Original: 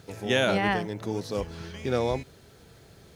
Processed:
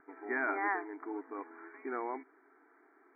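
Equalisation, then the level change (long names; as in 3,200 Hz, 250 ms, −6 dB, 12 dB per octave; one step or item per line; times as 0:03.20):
linear-phase brick-wall band-pass 260–2,400 Hz
high-frequency loss of the air 370 metres
phaser with its sweep stopped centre 1,300 Hz, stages 4
0.0 dB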